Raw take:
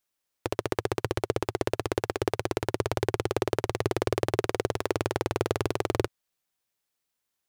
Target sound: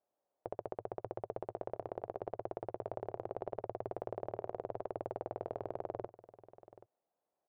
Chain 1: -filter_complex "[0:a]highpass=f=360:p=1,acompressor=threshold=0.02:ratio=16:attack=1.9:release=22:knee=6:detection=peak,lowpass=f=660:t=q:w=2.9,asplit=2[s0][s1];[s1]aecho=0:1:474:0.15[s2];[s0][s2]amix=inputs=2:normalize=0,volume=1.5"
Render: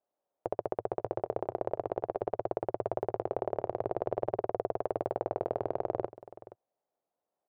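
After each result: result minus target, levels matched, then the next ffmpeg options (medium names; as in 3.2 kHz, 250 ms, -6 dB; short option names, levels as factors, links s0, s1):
compression: peak gain reduction -9.5 dB; echo 306 ms early
-filter_complex "[0:a]highpass=f=360:p=1,acompressor=threshold=0.00631:ratio=16:attack=1.9:release=22:knee=6:detection=peak,lowpass=f=660:t=q:w=2.9,asplit=2[s0][s1];[s1]aecho=0:1:474:0.15[s2];[s0][s2]amix=inputs=2:normalize=0,volume=1.5"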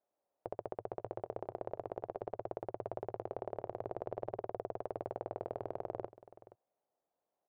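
echo 306 ms early
-filter_complex "[0:a]highpass=f=360:p=1,acompressor=threshold=0.00631:ratio=16:attack=1.9:release=22:knee=6:detection=peak,lowpass=f=660:t=q:w=2.9,asplit=2[s0][s1];[s1]aecho=0:1:780:0.15[s2];[s0][s2]amix=inputs=2:normalize=0,volume=1.5"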